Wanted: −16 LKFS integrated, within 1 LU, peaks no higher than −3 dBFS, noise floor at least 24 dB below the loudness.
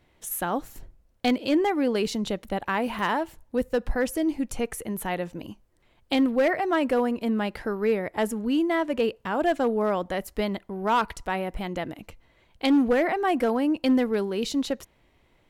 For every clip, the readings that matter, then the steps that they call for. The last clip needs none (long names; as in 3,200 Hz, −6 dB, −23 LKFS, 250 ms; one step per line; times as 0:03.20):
share of clipped samples 0.7%; peaks flattened at −15.5 dBFS; number of dropouts 1; longest dropout 1.2 ms; integrated loudness −26.0 LKFS; sample peak −15.5 dBFS; target loudness −16.0 LKFS
→ clipped peaks rebuilt −15.5 dBFS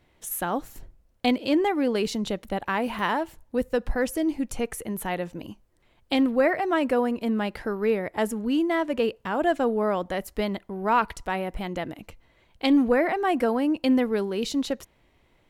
share of clipped samples 0.0%; number of dropouts 1; longest dropout 1.2 ms
→ repair the gap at 0:02.99, 1.2 ms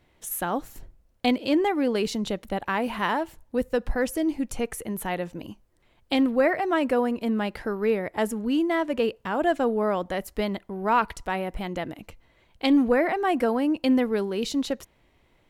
number of dropouts 0; integrated loudness −26.0 LKFS; sample peak −9.0 dBFS; target loudness −16.0 LKFS
→ level +10 dB
brickwall limiter −3 dBFS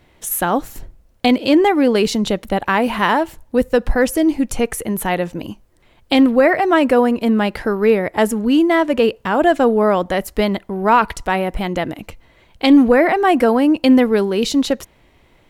integrated loudness −16.0 LKFS; sample peak −3.0 dBFS; background noise floor −54 dBFS